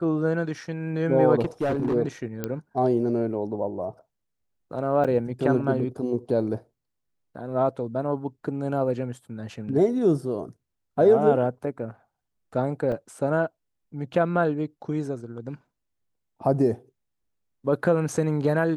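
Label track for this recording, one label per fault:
1.420000	1.950000	clipped -20.5 dBFS
2.440000	2.440000	pop -14 dBFS
5.040000	5.050000	gap 6.5 ms
12.920000	12.920000	gap 4.5 ms

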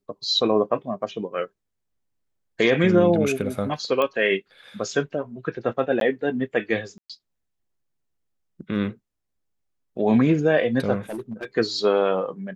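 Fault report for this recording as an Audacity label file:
4.020000	4.020000	pop -12 dBFS
6.000000	6.010000	gap 12 ms
6.980000	7.100000	gap 0.116 s
11.100000	11.450000	clipped -26.5 dBFS

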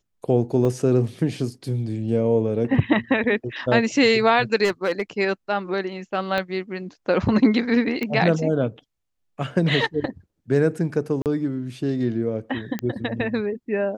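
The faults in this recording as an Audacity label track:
0.650000	0.650000	gap 2.7 ms
4.640000	5.020000	clipped -16.5 dBFS
6.380000	6.380000	pop -13 dBFS
8.030000	8.030000	pop -14 dBFS
11.220000	11.260000	gap 38 ms
12.790000	12.790000	pop -13 dBFS

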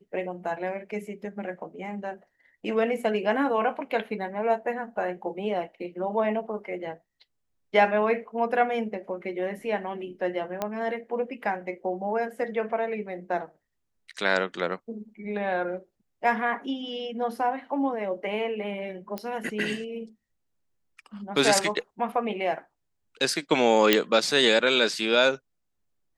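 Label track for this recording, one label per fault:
10.620000	10.620000	pop -14 dBFS
19.180000	19.180000	pop -17 dBFS
23.930000	23.930000	pop -3 dBFS

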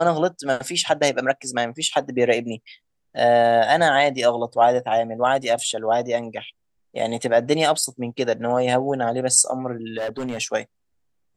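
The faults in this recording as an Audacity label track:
9.970000	10.410000	clipped -23.5 dBFS

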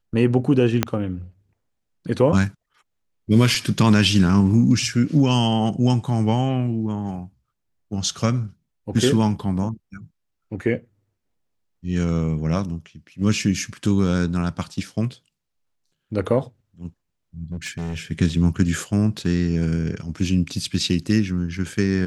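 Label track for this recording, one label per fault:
0.830000	0.830000	pop -3 dBFS
17.520000	18.020000	clipped -24 dBFS

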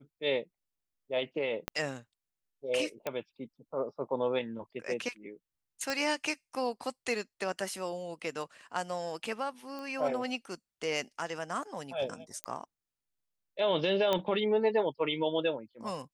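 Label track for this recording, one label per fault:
1.680000	1.680000	pop -16 dBFS
3.070000	3.070000	pop -19 dBFS
5.900000	5.900000	pop -18 dBFS
9.790000	9.790000	pop -29 dBFS
12.440000	12.440000	pop -19 dBFS
14.130000	14.130000	pop -15 dBFS

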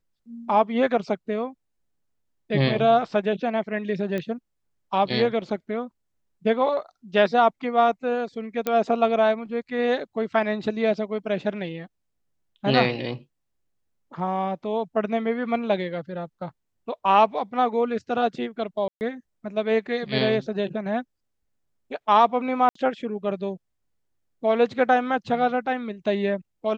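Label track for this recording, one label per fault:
4.180000	4.180000	pop -17 dBFS
8.670000	8.670000	pop -11 dBFS
18.880000	19.010000	gap 0.129 s
22.690000	22.750000	gap 64 ms

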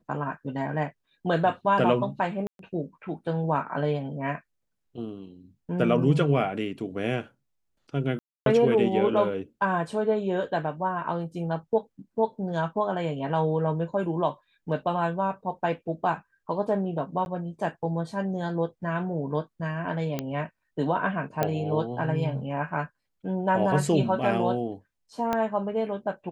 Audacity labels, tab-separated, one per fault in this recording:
2.470000	2.590000	gap 0.122 s
8.190000	8.460000	gap 0.272 s
17.250000	17.260000	gap 11 ms
20.190000	20.190000	pop -14 dBFS
21.430000	21.430000	pop -11 dBFS
25.330000	25.330000	pop -13 dBFS

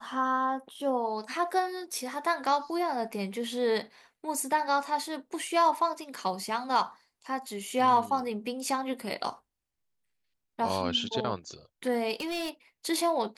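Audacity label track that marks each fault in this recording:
12.140000	12.500000	clipped -30 dBFS

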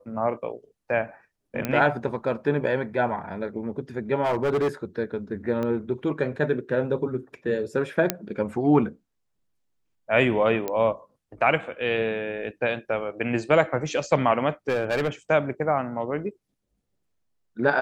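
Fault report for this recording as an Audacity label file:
1.650000	1.650000	pop -11 dBFS
4.230000	4.680000	clipped -19.5 dBFS
5.630000	5.630000	pop -18 dBFS
8.100000	8.100000	pop -4 dBFS
10.680000	10.680000	pop -14 dBFS
14.690000	15.090000	clipped -19.5 dBFS

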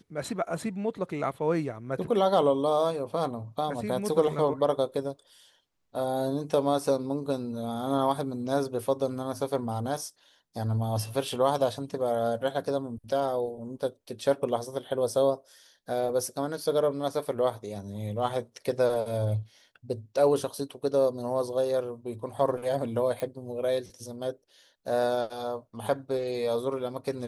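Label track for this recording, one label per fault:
23.200000	23.200000	pop -20 dBFS

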